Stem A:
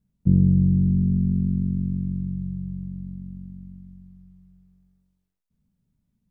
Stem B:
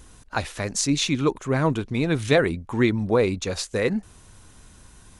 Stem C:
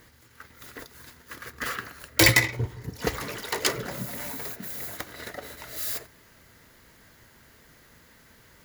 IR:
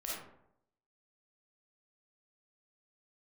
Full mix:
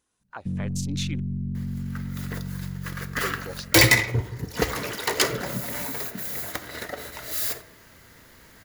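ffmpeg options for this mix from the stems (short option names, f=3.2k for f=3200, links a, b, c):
-filter_complex "[0:a]alimiter=limit=-21dB:level=0:latency=1:release=35,adelay=200,volume=-2.5dB,asplit=2[a][b];[b]volume=-8dB[c];[1:a]highpass=f=340:p=1,alimiter=limit=-15dB:level=0:latency=1:release=194,afwtdn=0.0178,volume=-6.5dB,asplit=3[d][e][f];[d]atrim=end=1.2,asetpts=PTS-STARTPTS,afade=t=out:st=1.196:d=0.004:c=hsin[g];[e]atrim=start=1.2:end=3.23,asetpts=PTS-STARTPTS,volume=0[h];[f]atrim=start=3.23,asetpts=PTS-STARTPTS,afade=t=in:d=0.004:c=hsin[i];[g][h][i]concat=n=3:v=0:a=1[j];[2:a]aeval=exprs='0.794*sin(PI/2*2*val(0)/0.794)':c=same,adelay=1550,volume=-7dB,asplit=2[k][l];[l]volume=-13dB[m];[3:a]atrim=start_sample=2205[n];[c][m]amix=inputs=2:normalize=0[o];[o][n]afir=irnorm=-1:irlink=0[p];[a][j][k][p]amix=inputs=4:normalize=0"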